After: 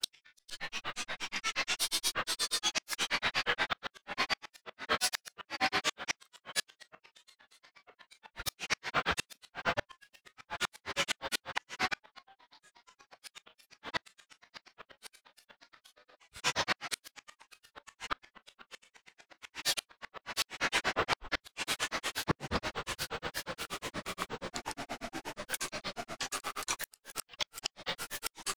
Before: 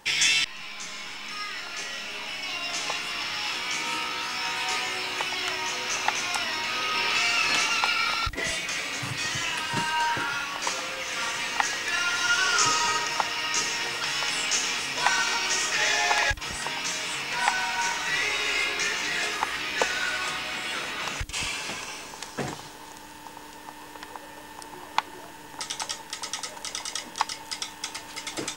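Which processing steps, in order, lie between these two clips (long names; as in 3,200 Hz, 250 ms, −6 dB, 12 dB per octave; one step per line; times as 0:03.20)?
feedback delay with all-pass diffusion 1,617 ms, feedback 46%, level −8.5 dB
granular cloud 100 ms, grains 8.4 per second, pitch spread up and down by 12 semitones
gate with flip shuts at −20 dBFS, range −39 dB
level +3 dB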